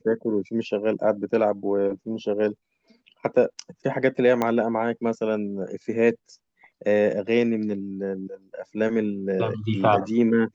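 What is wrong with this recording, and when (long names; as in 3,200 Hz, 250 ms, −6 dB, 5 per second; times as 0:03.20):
0:04.42: click −11 dBFS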